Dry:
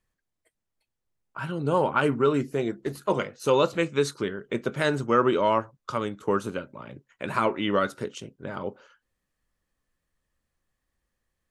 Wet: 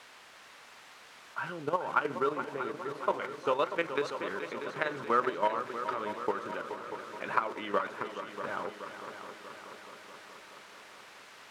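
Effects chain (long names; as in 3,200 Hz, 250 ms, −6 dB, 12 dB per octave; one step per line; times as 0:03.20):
low-shelf EQ 150 Hz −4.5 dB
downward compressor 5 to 1, threshold −23 dBFS, peak gain reduction 7.5 dB
in parallel at −5 dB: bit-depth reduction 6 bits, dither triangular
on the sum: output level in coarse steps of 11 dB
low-pass filter 1,500 Hz 12 dB per octave
spectral tilt +4.5 dB per octave
echo machine with several playback heads 213 ms, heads second and third, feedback 65%, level −11 dB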